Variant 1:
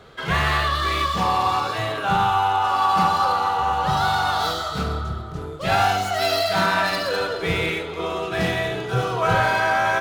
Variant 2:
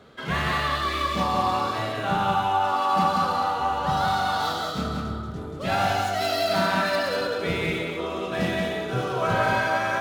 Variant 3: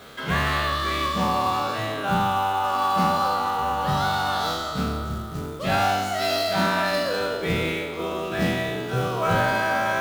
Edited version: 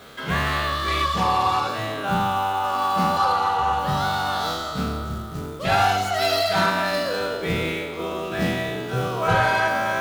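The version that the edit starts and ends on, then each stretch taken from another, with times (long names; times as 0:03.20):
3
0:00.88–0:01.69: punch in from 1
0:03.17–0:03.79: punch in from 1
0:05.65–0:06.70: punch in from 1
0:09.28–0:09.68: punch in from 1
not used: 2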